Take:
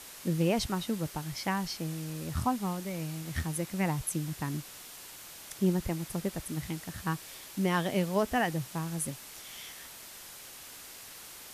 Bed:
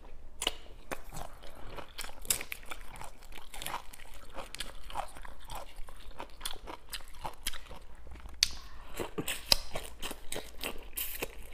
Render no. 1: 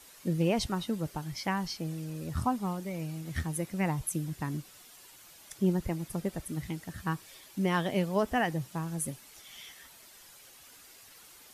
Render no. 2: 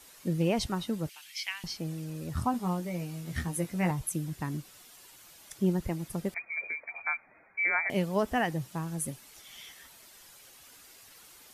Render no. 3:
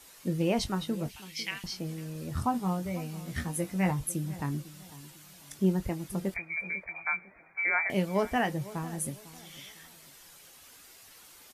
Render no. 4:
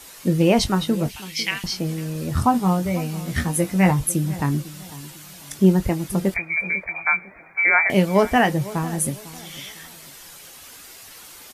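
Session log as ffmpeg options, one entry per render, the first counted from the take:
-af "afftdn=nr=9:nf=-48"
-filter_complex "[0:a]asettb=1/sr,asplit=3[s0][s1][s2];[s0]atrim=end=1.094[s3];[s1]atrim=start=1.09:end=1.64,asetpts=PTS-STARTPTS,afade=t=in:d=0.004:c=qsin,afade=t=out:st=0.546:d=0.004:c=qsin,highpass=f=2600:t=q:w=2.9[s4];[s2]atrim=start=1.636[s5];[s3][s4]acrossfade=d=0.004:c1=hsin:c2=qsin[s6];[s6][s5]acrossfade=d=0.004:c1=qsin:c2=hsin,asettb=1/sr,asplit=3[s7][s8][s9];[s7]atrim=end=2.524[s10];[s8]atrim=start=2.52:end=3.91,asetpts=PTS-STARTPTS,afade=t=in:d=0.004:c=qsin,afade=t=out:st=1.386:d=0.004:c=qsin,asplit=2[s11][s12];[s12]adelay=17,volume=0.562[s13];[s11][s13]amix=inputs=2:normalize=0,atrim=end_sample=61299[s14];[s9]atrim=start=3.906[s15];[s10][s14]acrossfade=d=0.004:c1=hsin:c2=qsin[s16];[s16][s15]acrossfade=d=0.004:c1=qsin:c2=hsin,asettb=1/sr,asplit=3[s17][s18][s19];[s17]atrim=end=6.344[s20];[s18]atrim=start=6.34:end=7.9,asetpts=PTS-STARTPTS,afade=t=in:d=0.004:c=qsin,afade=t=out:st=1.556:d=0.004:c=qsin,lowpass=f=2100:t=q:w=0.5098,lowpass=f=2100:t=q:w=0.6013,lowpass=f=2100:t=q:w=0.9,lowpass=f=2100:t=q:w=2.563,afreqshift=-2500[s21];[s19]atrim=start=7.896[s22];[s20][s21]acrossfade=d=0.004:c1=hsin:c2=qsin[s23];[s23][s22]acrossfade=d=0.004:c1=qsin:c2=hsin"
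-filter_complex "[0:a]asplit=2[s0][s1];[s1]adelay=21,volume=0.299[s2];[s0][s2]amix=inputs=2:normalize=0,asplit=2[s3][s4];[s4]adelay=500,lowpass=f=1600:p=1,volume=0.141,asplit=2[s5][s6];[s6]adelay=500,lowpass=f=1600:p=1,volume=0.35,asplit=2[s7][s8];[s8]adelay=500,lowpass=f=1600:p=1,volume=0.35[s9];[s3][s5][s7][s9]amix=inputs=4:normalize=0"
-af "volume=3.55"

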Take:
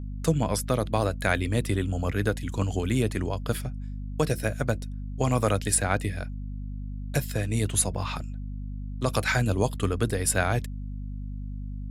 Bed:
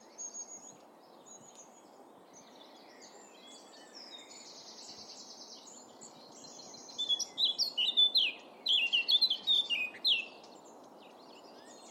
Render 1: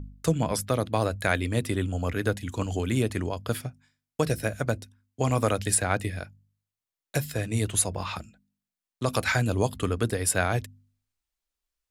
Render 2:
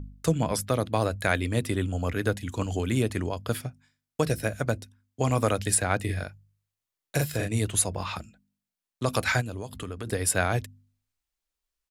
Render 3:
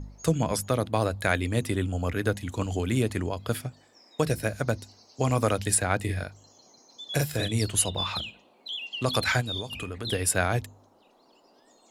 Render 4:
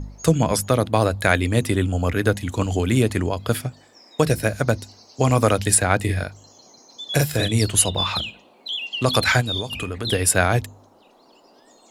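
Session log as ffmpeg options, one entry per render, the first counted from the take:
-af "bandreject=f=50:t=h:w=4,bandreject=f=100:t=h:w=4,bandreject=f=150:t=h:w=4,bandreject=f=200:t=h:w=4,bandreject=f=250:t=h:w=4"
-filter_complex "[0:a]asplit=3[s0][s1][s2];[s0]afade=t=out:st=6.08:d=0.02[s3];[s1]asplit=2[s4][s5];[s5]adelay=42,volume=0.75[s6];[s4][s6]amix=inputs=2:normalize=0,afade=t=in:st=6.08:d=0.02,afade=t=out:st=7.47:d=0.02[s7];[s2]afade=t=in:st=7.47:d=0.02[s8];[s3][s7][s8]amix=inputs=3:normalize=0,asplit=3[s9][s10][s11];[s9]afade=t=out:st=9.4:d=0.02[s12];[s10]acompressor=threshold=0.0224:ratio=4:attack=3.2:release=140:knee=1:detection=peak,afade=t=in:st=9.4:d=0.02,afade=t=out:st=10.06:d=0.02[s13];[s11]afade=t=in:st=10.06:d=0.02[s14];[s12][s13][s14]amix=inputs=3:normalize=0"
-filter_complex "[1:a]volume=0.473[s0];[0:a][s0]amix=inputs=2:normalize=0"
-af "volume=2.24"

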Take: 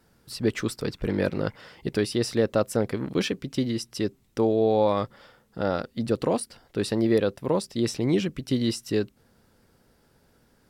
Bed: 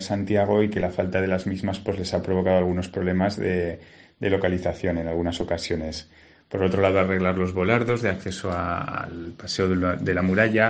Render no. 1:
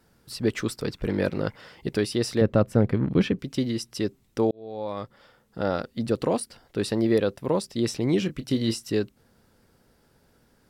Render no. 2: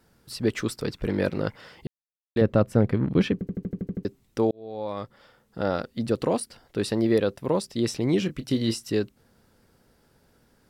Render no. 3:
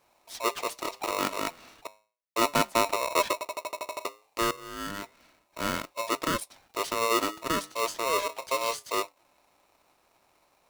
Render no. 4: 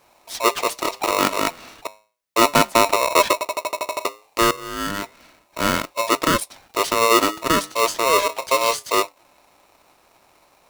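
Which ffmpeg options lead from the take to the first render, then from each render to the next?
-filter_complex "[0:a]asettb=1/sr,asplit=3[s0][s1][s2];[s0]atrim=end=2.414[s3];[s1]atrim=start=2.41:end=3.39,asetpts=PTS-STARTPTS,afade=t=in:d=0.004:c=qsin,afade=t=out:st=0.976:d=0.004:c=qsin,bass=f=250:g=10,treble=f=4000:g=-13[s4];[s2]atrim=start=3.386[s5];[s3][s4]acrossfade=d=0.004:c1=hsin:c2=qsin[s6];[s6][s5]acrossfade=d=0.004:c1=qsin:c2=hsin,asettb=1/sr,asplit=3[s7][s8][s9];[s7]atrim=end=8.194[s10];[s8]atrim=start=8.19:end=8.86,asetpts=PTS-STARTPTS,afade=t=in:d=0.004:c=qsin,afade=t=out:st=0.666:d=0.004:c=qsin,asplit=2[s11][s12];[s12]adelay=27,volume=0.282[s13];[s11][s13]amix=inputs=2:normalize=0,atrim=end_sample=29547[s14];[s9]atrim=start=8.856[s15];[s10][s14]acrossfade=d=0.004:c1=hsin:c2=qsin[s16];[s16][s15]acrossfade=d=0.004:c1=qsin:c2=hsin,asplit=2[s17][s18];[s17]atrim=end=4.51,asetpts=PTS-STARTPTS,afade=t=out:st=4.506:d=0.004:c=hsin[s19];[s18]atrim=start=4.51,asetpts=PTS-STARTPTS,afade=t=in:d=1.12[s20];[s19][s20]concat=n=2:v=0:a=1"
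-filter_complex "[0:a]asplit=12[s0][s1][s2][s3][s4][s5][s6][s7][s8][s9][s10][s11];[s0]atrim=end=1.87,asetpts=PTS-STARTPTS,afade=t=out:st=1.866:d=0.004:c=hsin[s12];[s1]atrim=start=1.87:end=2.36,asetpts=PTS-STARTPTS,volume=0[s13];[s2]atrim=start=2.36:end=3.412,asetpts=PTS-STARTPTS,afade=t=in:d=0.004:c=hsin[s14];[s3]atrim=start=3.328:end=3.412[s15];[s4]atrim=start=3.328:end=3.412[s16];[s5]atrim=start=3.328:end=3.412[s17];[s6]atrim=start=3.328:end=3.412[s18];[s7]atrim=start=3.328:end=3.412[s19];[s8]atrim=start=3.328:end=3.412[s20];[s9]atrim=start=3.328:end=3.412[s21];[s10]atrim=start=3.328:end=3.412[s22];[s11]atrim=start=4.048[s23];[s12][s13][s14]concat=n=3:v=0:a=1[s24];[s24][s15]acrossfade=d=0.004:c1=hsin:c2=hsin[s25];[s25][s16]acrossfade=d=0.004:c1=hsin:c2=hsin[s26];[s26][s17]acrossfade=d=0.004:c1=hsin:c2=hsin[s27];[s27][s18]acrossfade=d=0.004:c1=hsin:c2=hsin[s28];[s28][s19]acrossfade=d=0.004:c1=hsin:c2=hsin[s29];[s29][s20]acrossfade=d=0.004:c1=hsin:c2=hsin[s30];[s30][s21]acrossfade=d=0.004:c1=hsin:c2=hsin[s31];[s31][s22]acrossfade=d=0.004:c1=hsin:c2=hsin[s32];[s32][s23]acrossfade=d=0.004:c1=hsin:c2=hsin"
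-af "flanger=delay=3.5:depth=8.3:regen=-85:speed=0.32:shape=triangular,aeval=exprs='val(0)*sgn(sin(2*PI*800*n/s))':c=same"
-af "volume=3.16,alimiter=limit=0.708:level=0:latency=1"

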